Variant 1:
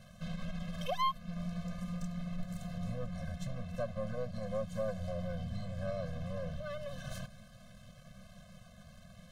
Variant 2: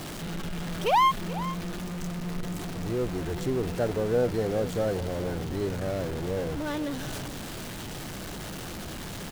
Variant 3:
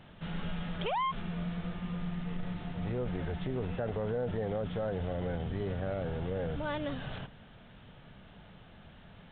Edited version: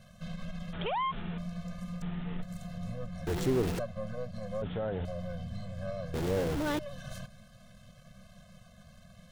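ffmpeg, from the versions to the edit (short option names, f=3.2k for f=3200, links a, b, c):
-filter_complex "[2:a]asplit=3[a][b][c];[1:a]asplit=2[d][e];[0:a]asplit=6[f][g][h][i][j][k];[f]atrim=end=0.732[l];[a]atrim=start=0.728:end=1.382[m];[g]atrim=start=1.378:end=2.022[n];[b]atrim=start=2.018:end=2.422[o];[h]atrim=start=2.418:end=3.272[p];[d]atrim=start=3.268:end=3.792[q];[i]atrim=start=3.788:end=4.622[r];[c]atrim=start=4.618:end=5.052[s];[j]atrim=start=5.048:end=6.142[t];[e]atrim=start=6.138:end=6.792[u];[k]atrim=start=6.788[v];[l][m]acrossfade=d=0.004:c1=hsin:c2=hsin[w];[w][n]acrossfade=d=0.004:c1=hsin:c2=hsin[x];[x][o]acrossfade=d=0.004:c1=hsin:c2=hsin[y];[y][p]acrossfade=d=0.004:c1=hsin:c2=hsin[z];[z][q]acrossfade=d=0.004:c1=hsin:c2=hsin[aa];[aa][r]acrossfade=d=0.004:c1=hsin:c2=hsin[ab];[ab][s]acrossfade=d=0.004:c1=hsin:c2=hsin[ac];[ac][t]acrossfade=d=0.004:c1=hsin:c2=hsin[ad];[ad][u]acrossfade=d=0.004:c1=hsin:c2=hsin[ae];[ae][v]acrossfade=d=0.004:c1=hsin:c2=hsin"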